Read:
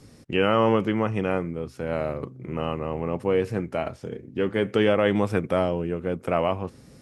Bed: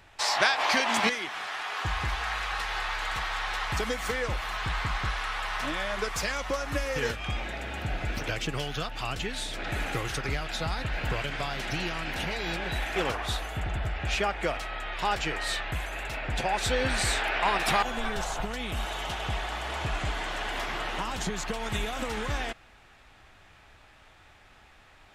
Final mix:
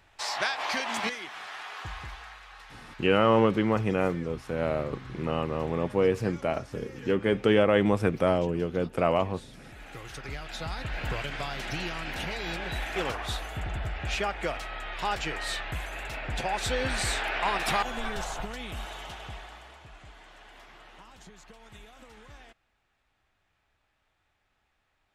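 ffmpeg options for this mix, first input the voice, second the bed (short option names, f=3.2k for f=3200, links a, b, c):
-filter_complex "[0:a]adelay=2700,volume=-1dB[a];[1:a]volume=9.5dB,afade=t=out:st=1.59:d=0.81:silence=0.266073,afade=t=in:st=9.75:d=1.28:silence=0.177828,afade=t=out:st=18.19:d=1.62:silence=0.141254[b];[a][b]amix=inputs=2:normalize=0"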